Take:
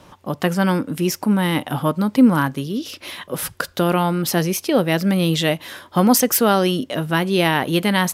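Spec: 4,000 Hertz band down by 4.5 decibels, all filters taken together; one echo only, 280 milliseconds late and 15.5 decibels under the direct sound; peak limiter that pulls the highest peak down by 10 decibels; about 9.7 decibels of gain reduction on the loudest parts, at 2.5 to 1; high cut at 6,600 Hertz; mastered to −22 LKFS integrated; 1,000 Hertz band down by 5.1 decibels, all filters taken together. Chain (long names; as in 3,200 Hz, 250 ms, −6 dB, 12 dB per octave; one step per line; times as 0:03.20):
low-pass filter 6,600 Hz
parametric band 1,000 Hz −6.5 dB
parametric band 4,000 Hz −5.5 dB
downward compressor 2.5 to 1, threshold −23 dBFS
brickwall limiter −21 dBFS
single-tap delay 280 ms −15.5 dB
level +8 dB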